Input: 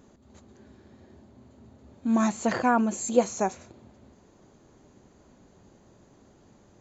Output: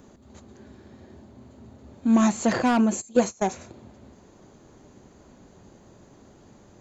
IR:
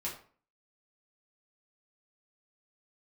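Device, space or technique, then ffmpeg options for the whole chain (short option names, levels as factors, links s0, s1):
one-band saturation: -filter_complex "[0:a]asplit=3[s0][s1][s2];[s0]afade=t=out:st=3:d=0.02[s3];[s1]agate=range=0.0794:threshold=0.0447:ratio=16:detection=peak,afade=t=in:st=3:d=0.02,afade=t=out:st=3.47:d=0.02[s4];[s2]afade=t=in:st=3.47:d=0.02[s5];[s3][s4][s5]amix=inputs=3:normalize=0,acrossover=split=420|3700[s6][s7][s8];[s7]asoftclip=type=tanh:threshold=0.0473[s9];[s6][s9][s8]amix=inputs=3:normalize=0,volume=1.78"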